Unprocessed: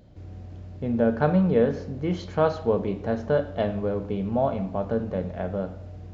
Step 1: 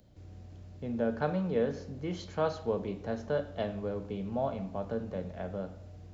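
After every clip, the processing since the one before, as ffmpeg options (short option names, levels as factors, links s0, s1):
-filter_complex "[0:a]highshelf=f=4600:g=11.5,acrossover=split=210|920|1100[s0][s1][s2][s3];[s0]alimiter=level_in=1.33:limit=0.0631:level=0:latency=1,volume=0.75[s4];[s4][s1][s2][s3]amix=inputs=4:normalize=0,volume=0.376"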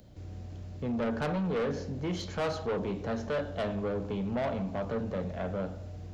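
-af "asoftclip=type=tanh:threshold=0.0211,volume=2.11"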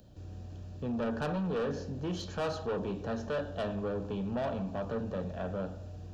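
-af "asuperstop=centerf=2100:order=4:qfactor=5.2,volume=0.794"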